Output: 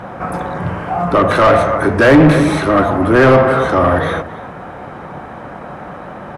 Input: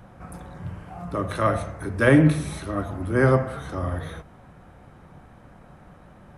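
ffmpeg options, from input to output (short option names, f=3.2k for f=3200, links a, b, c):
-filter_complex "[0:a]asplit=2[a][b];[b]adelay=279.9,volume=-18dB,highshelf=f=4k:g=-6.3[c];[a][c]amix=inputs=2:normalize=0,asplit=2[d][e];[e]highpass=f=720:p=1,volume=27dB,asoftclip=type=tanh:threshold=-4.5dB[f];[d][f]amix=inputs=2:normalize=0,lowpass=f=1k:p=1,volume=-6dB,acontrast=25,volume=1.5dB"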